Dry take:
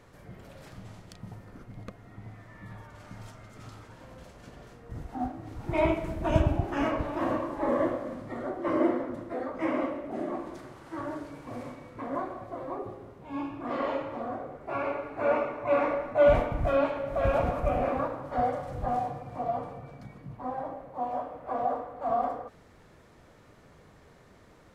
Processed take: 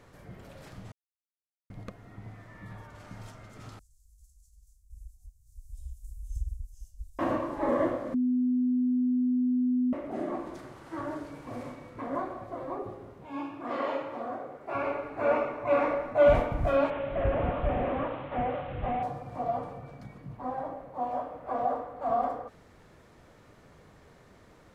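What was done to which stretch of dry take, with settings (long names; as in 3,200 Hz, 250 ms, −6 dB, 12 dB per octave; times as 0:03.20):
0:00.92–0:01.70: silence
0:03.79–0:07.19: inverse Chebyshev band-stop filter 180–2,400 Hz, stop band 60 dB
0:08.14–0:09.93: beep over 250 Hz −23 dBFS
0:13.26–0:14.75: high-pass filter 260 Hz 6 dB per octave
0:16.90–0:19.03: linear delta modulator 16 kbit/s, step −39.5 dBFS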